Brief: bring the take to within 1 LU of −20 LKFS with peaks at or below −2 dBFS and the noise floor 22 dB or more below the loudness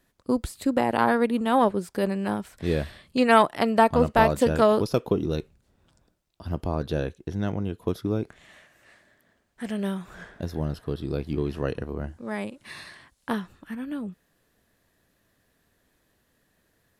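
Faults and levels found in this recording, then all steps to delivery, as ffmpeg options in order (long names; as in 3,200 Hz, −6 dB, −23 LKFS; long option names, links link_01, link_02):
integrated loudness −25.5 LKFS; sample peak −3.5 dBFS; target loudness −20.0 LKFS
→ -af "volume=5.5dB,alimiter=limit=-2dB:level=0:latency=1"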